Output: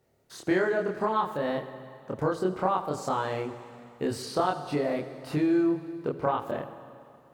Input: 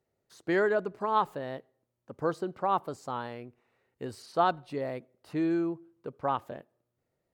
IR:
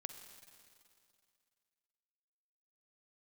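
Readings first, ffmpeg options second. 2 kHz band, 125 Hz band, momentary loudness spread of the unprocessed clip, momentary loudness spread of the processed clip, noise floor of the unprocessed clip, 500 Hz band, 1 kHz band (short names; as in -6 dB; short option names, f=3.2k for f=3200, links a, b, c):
+2.0 dB, +6.0 dB, 15 LU, 15 LU, -82 dBFS, +3.5 dB, +1.0 dB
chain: -filter_complex "[0:a]acompressor=threshold=-35dB:ratio=5,asplit=2[a][b];[1:a]atrim=start_sample=2205,adelay=27[c];[b][c]afir=irnorm=-1:irlink=0,volume=3.5dB[d];[a][d]amix=inputs=2:normalize=0,volume=8.5dB"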